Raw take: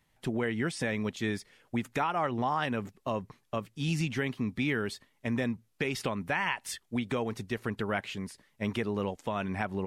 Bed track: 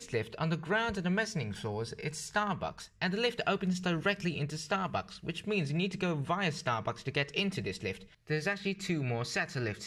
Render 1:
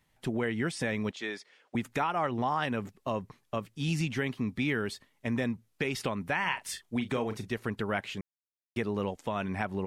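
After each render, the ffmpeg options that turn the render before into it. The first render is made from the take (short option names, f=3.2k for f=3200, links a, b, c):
-filter_complex "[0:a]asettb=1/sr,asplit=3[a][b][c];[a]atrim=end=1.114[d];[b]atrim=start=1.11:end=1.75,asetpts=PTS-STARTPTS,afade=t=in:d=0.004:c=qsin,afade=t=out:st=0.636:d=0.004:c=qsin,highpass=430,lowpass=6.1k[e];[c]atrim=start=1.746[f];[d][e]acrossfade=d=0.004:c1=hsin:c2=qsin[g];[g][f]acrossfade=d=0.004:c1=qsin:c2=hsin,asettb=1/sr,asplit=3[h][i][j];[h]atrim=end=6.404[k];[i]atrim=start=6.4:end=7.48,asetpts=PTS-STARTPTS,afade=t=in:d=0.004:c=qsin,afade=t=out:st=1.076:d=0.004:c=qsin,asplit=2[l][m];[m]adelay=38,volume=-10.5dB[n];[l][n]amix=inputs=2:normalize=0,atrim=end_sample=47628[o];[j]atrim=start=7.476[p];[k][o]acrossfade=d=0.004:c1=hsin:c2=qsin[q];[q][p]acrossfade=d=0.004:c1=qsin:c2=hsin,asplit=3[r][s][t];[r]atrim=end=8.21,asetpts=PTS-STARTPTS,afade=t=out:st=8.206:d=0.004:c=hsin[u];[s]atrim=start=8.21:end=8.76,asetpts=PTS-STARTPTS,volume=0[v];[t]atrim=start=8.76,asetpts=PTS-STARTPTS,afade=t=in:d=0.004:c=hsin[w];[u][v][w]concat=n=3:v=0:a=1"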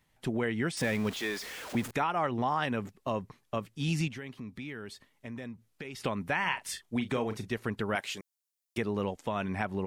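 -filter_complex "[0:a]asettb=1/sr,asplit=3[a][b][c];[a]atrim=end=0.774[d];[b]atrim=start=0.77:end=1.91,asetpts=PTS-STARTPTS,afade=t=in:d=0.004:c=qsin,afade=t=out:st=1.136:d=0.004:c=qsin,aeval=exprs='val(0)+0.5*0.0141*sgn(val(0))':c=same[e];[c]atrim=start=1.906[f];[d][e]acrossfade=d=0.004:c1=hsin:c2=qsin[g];[g][f]acrossfade=d=0.004:c1=qsin:c2=hsin,asettb=1/sr,asplit=3[h][i][j];[h]atrim=end=4.084[k];[i]atrim=start=4.08:end=6.02,asetpts=PTS-STARTPTS,afade=t=in:d=0.004:c=qsin,afade=t=out:st=1.936:d=0.004:c=qsin,acompressor=threshold=-46dB:ratio=2:attack=3.2:release=140:knee=1:detection=peak[l];[j]atrim=start=6.016[m];[k][l]acrossfade=d=0.004:c1=hsin:c2=qsin[n];[n][m]acrossfade=d=0.004:c1=qsin:c2=hsin,asettb=1/sr,asplit=3[o][p][q];[o]atrim=end=7.954[r];[p]atrim=start=7.95:end=8.78,asetpts=PTS-STARTPTS,afade=t=in:d=0.004:c=qsin,afade=t=out:st=0.826:d=0.004:c=qsin,bass=f=250:g=-12,treble=f=4k:g=10[s];[q]atrim=start=8.776[t];[r][s]acrossfade=d=0.004:c1=hsin:c2=qsin[u];[u][t]acrossfade=d=0.004:c1=qsin:c2=hsin"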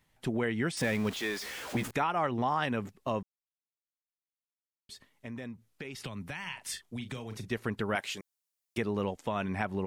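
-filter_complex "[0:a]asettb=1/sr,asplit=3[a][b][c];[a]atrim=end=1.404[d];[b]atrim=start=1.4:end=1.89,asetpts=PTS-STARTPTS,afade=t=in:d=0.004:c=qsin,afade=t=out:st=0.486:d=0.004:c=qsin,asplit=2[e][f];[f]adelay=15,volume=-5dB[g];[e][g]amix=inputs=2:normalize=0,atrim=end_sample=21609[h];[c]atrim=start=1.886[i];[d][h]acrossfade=d=0.004:c1=hsin:c2=qsin[j];[j][i]acrossfade=d=0.004:c1=qsin:c2=hsin,asettb=1/sr,asplit=3[k][l][m];[k]atrim=end=5.974[n];[l]atrim=start=5.97:end=7.5,asetpts=PTS-STARTPTS,afade=t=in:d=0.004:c=qsin,afade=t=out:st=1.526:d=0.004:c=qsin,acrossover=split=150|3000[o][p][q];[p]acompressor=threshold=-41dB:ratio=6:attack=3.2:release=140:knee=2.83:detection=peak[r];[o][r][q]amix=inputs=3:normalize=0[s];[m]atrim=start=7.496[t];[n][s]acrossfade=d=0.004:c1=hsin:c2=qsin[u];[u][t]acrossfade=d=0.004:c1=qsin:c2=hsin,asplit=3[v][w][x];[v]atrim=end=3.23,asetpts=PTS-STARTPTS,afade=t=out:st=3.226:d=0.004:c=hsin[y];[w]atrim=start=3.23:end=4.89,asetpts=PTS-STARTPTS,volume=0[z];[x]atrim=start=4.89,asetpts=PTS-STARTPTS,afade=t=in:d=0.004:c=hsin[aa];[y][z][aa]concat=n=3:v=0:a=1"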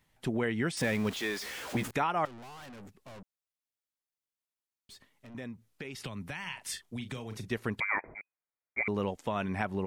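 -filter_complex "[0:a]asettb=1/sr,asplit=3[a][b][c];[a]atrim=end=2.254[d];[b]atrim=start=2.25:end=5.35,asetpts=PTS-STARTPTS,afade=t=in:d=0.004:c=qsin,afade=t=out:st=3.096:d=0.004:c=qsin,aeval=exprs='(tanh(224*val(0)+0.25)-tanh(0.25))/224':c=same[e];[c]atrim=start=5.346[f];[d][e]acrossfade=d=0.004:c1=hsin:c2=qsin[g];[g][f]acrossfade=d=0.004:c1=qsin:c2=hsin,asettb=1/sr,asplit=3[h][i][j];[h]atrim=end=7.804[k];[i]atrim=start=7.8:end=8.88,asetpts=PTS-STARTPTS,afade=t=in:d=0.004:c=qsin,afade=t=out:st=1.076:d=0.004:c=qsin,lowpass=f=2.1k:t=q:w=0.5098,lowpass=f=2.1k:t=q:w=0.6013,lowpass=f=2.1k:t=q:w=0.9,lowpass=f=2.1k:t=q:w=2.563,afreqshift=-2500[l];[j]atrim=start=8.876[m];[k][l]acrossfade=d=0.004:c1=hsin:c2=qsin[n];[n][m]acrossfade=d=0.004:c1=qsin:c2=hsin"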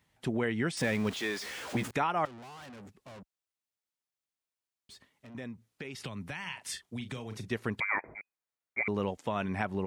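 -af "highpass=47,equalizer=f=14k:w=1.3:g=-6.5"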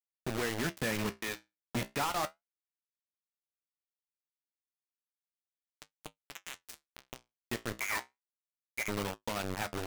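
-af "acrusher=bits=4:mix=0:aa=0.000001,flanger=delay=9.3:depth=8.2:regen=-57:speed=0.33:shape=sinusoidal"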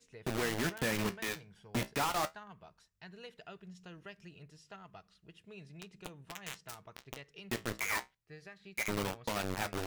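-filter_complex "[1:a]volume=-19.5dB[a];[0:a][a]amix=inputs=2:normalize=0"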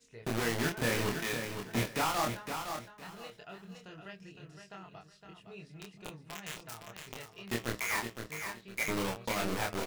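-filter_complex "[0:a]asplit=2[a][b];[b]adelay=26,volume=-2.5dB[c];[a][c]amix=inputs=2:normalize=0,aecho=1:1:512|1024|1536:0.447|0.103|0.0236"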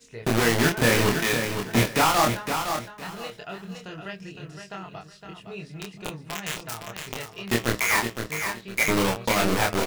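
-af "volume=11dB"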